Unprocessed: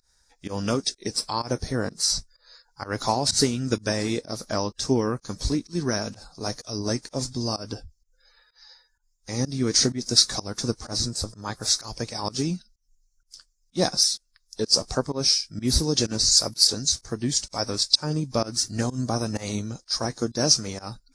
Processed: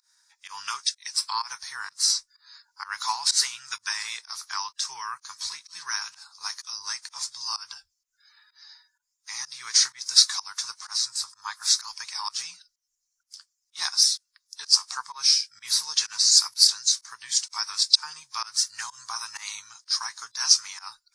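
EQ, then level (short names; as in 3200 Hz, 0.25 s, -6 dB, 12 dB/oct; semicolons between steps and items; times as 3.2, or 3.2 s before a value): elliptic high-pass 960 Hz, stop band 40 dB; +2.0 dB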